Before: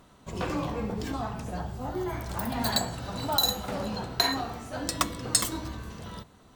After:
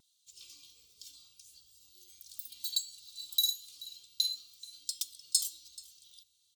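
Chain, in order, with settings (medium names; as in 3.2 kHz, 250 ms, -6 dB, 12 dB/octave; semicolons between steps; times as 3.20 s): inverse Chebyshev high-pass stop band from 1.9 kHz, stop band 40 dB; comb 2.5 ms, depth 71%; vibrato 1.4 Hz 26 cents; echo from a far wall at 74 m, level -14 dB; trim -5.5 dB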